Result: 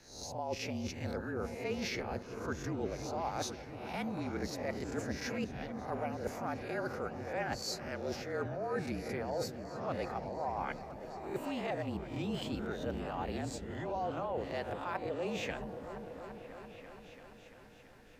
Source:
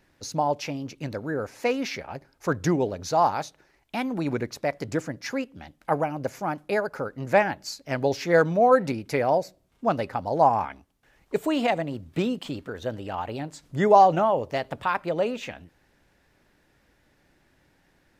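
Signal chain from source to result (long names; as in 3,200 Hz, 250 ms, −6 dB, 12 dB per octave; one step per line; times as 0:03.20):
peak hold with a rise ahead of every peak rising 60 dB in 0.42 s
reversed playback
downward compressor 10 to 1, threshold −35 dBFS, peak gain reduction 24.5 dB
reversed playback
echo whose low-pass opens from repeat to repeat 338 ms, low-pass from 400 Hz, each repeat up 1 octave, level −6 dB
frequency shifter −38 Hz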